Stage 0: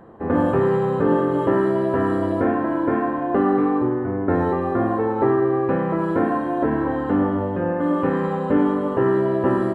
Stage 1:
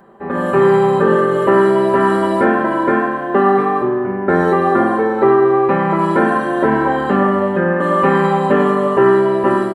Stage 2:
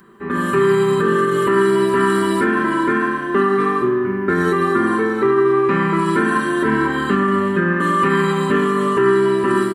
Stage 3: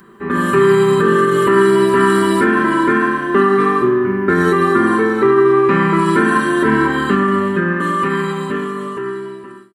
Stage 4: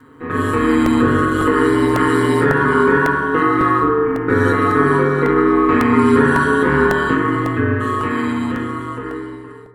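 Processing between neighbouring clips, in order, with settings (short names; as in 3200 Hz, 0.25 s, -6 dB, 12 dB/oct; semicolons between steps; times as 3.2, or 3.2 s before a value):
tilt +2 dB/oct; comb 5.1 ms, depth 75%; AGC
high shelf 3300 Hz +10.5 dB; limiter -6 dBFS, peak gain reduction 5.5 dB; band shelf 660 Hz -15 dB 1 oct
ending faded out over 2.94 s; gain +3.5 dB
ring modulator 76 Hz; reverb RT60 1.3 s, pre-delay 4 ms, DRR -0.5 dB; crackling interface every 0.55 s, samples 64, repeat, from 0.86; gain -1.5 dB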